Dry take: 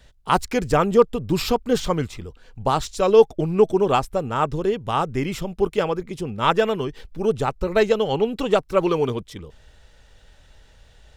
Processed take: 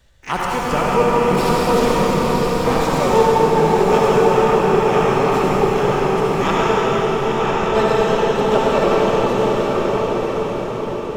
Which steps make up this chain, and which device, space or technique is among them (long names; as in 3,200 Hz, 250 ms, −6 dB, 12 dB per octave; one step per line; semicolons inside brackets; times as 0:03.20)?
0:06.23–0:07.64: Chebyshev low-pass filter 3,900 Hz, order 6
feedback delay with all-pass diffusion 953 ms, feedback 40%, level −4 dB
shimmer-style reverb (pitch-shifted copies added +12 semitones −8 dB; convolution reverb RT60 6.2 s, pre-delay 59 ms, DRR −6.5 dB)
level −4.5 dB